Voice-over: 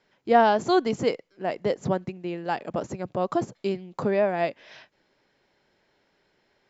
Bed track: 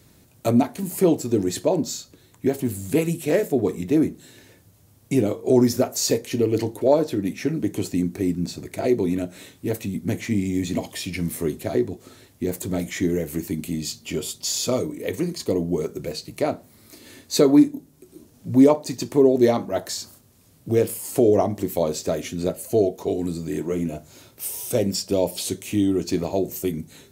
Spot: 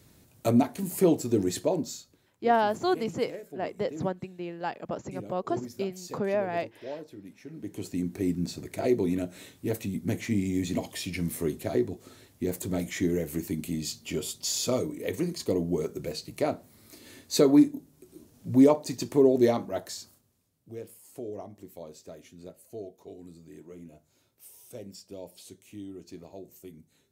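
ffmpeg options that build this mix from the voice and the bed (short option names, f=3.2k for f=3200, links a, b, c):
-filter_complex "[0:a]adelay=2150,volume=-5dB[a];[1:a]volume=12.5dB,afade=t=out:st=1.49:d=0.87:silence=0.141254,afade=t=in:st=7.47:d=0.84:silence=0.149624,afade=t=out:st=19.38:d=1.13:silence=0.149624[b];[a][b]amix=inputs=2:normalize=0"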